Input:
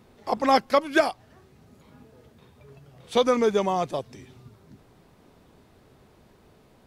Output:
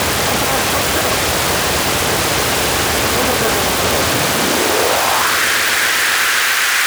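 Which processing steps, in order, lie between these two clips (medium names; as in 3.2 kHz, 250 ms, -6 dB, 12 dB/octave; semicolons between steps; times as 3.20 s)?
spectral levelling over time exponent 0.2; resonant high shelf 2.9 kHz -13.5 dB, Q 1.5; in parallel at +0.5 dB: peak limiter -7.5 dBFS, peak gain reduction 9.5 dB; on the sum: waveshaping leveller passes 5; transient shaper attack +11 dB, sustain -9 dB; wavefolder -9.5 dBFS; high-pass sweep 71 Hz -> 1.6 kHz, 3.96–5.42 s; on a send: echo with a slow build-up 129 ms, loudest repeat 5, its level -18 dB; on the sum: trim -1.5 dB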